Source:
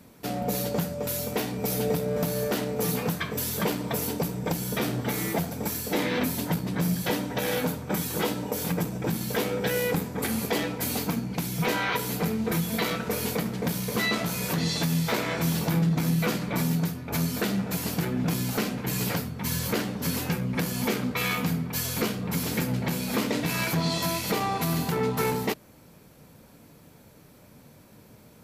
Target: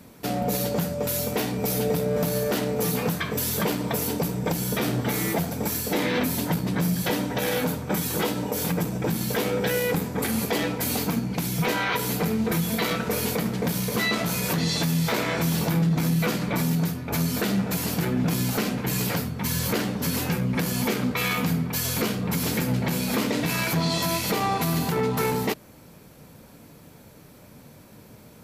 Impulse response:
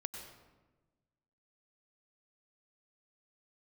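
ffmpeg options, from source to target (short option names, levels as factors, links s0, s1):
-af "alimiter=limit=0.106:level=0:latency=1:release=62,volume=1.58"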